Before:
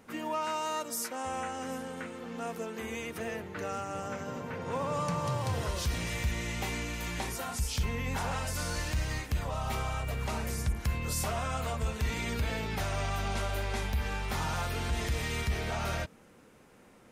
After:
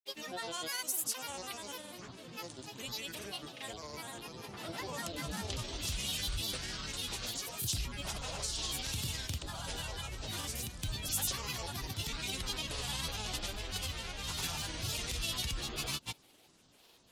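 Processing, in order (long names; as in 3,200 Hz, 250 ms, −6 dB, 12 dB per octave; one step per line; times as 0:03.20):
granular cloud, pitch spread up and down by 12 semitones
flat-topped bell 6,100 Hz +13 dB 2.6 octaves
level −8 dB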